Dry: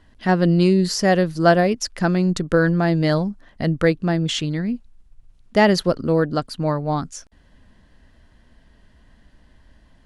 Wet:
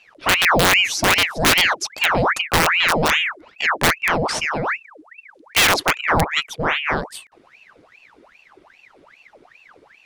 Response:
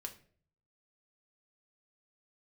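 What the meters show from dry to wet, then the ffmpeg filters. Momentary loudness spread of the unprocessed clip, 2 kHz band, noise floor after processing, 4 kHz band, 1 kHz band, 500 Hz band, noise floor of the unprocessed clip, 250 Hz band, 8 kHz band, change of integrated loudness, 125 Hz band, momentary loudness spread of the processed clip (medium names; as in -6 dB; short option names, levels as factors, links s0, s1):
9 LU, +10.0 dB, -54 dBFS, +10.0 dB, +4.5 dB, -4.5 dB, -55 dBFS, -9.0 dB, +9.0 dB, +2.0 dB, -8.0 dB, 9 LU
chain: -af "aeval=exprs='(mod(2.82*val(0)+1,2)-1)/2.82':c=same,aeval=exprs='val(0)*sin(2*PI*1500*n/s+1500*0.8/2.5*sin(2*PI*2.5*n/s))':c=same,volume=1.5"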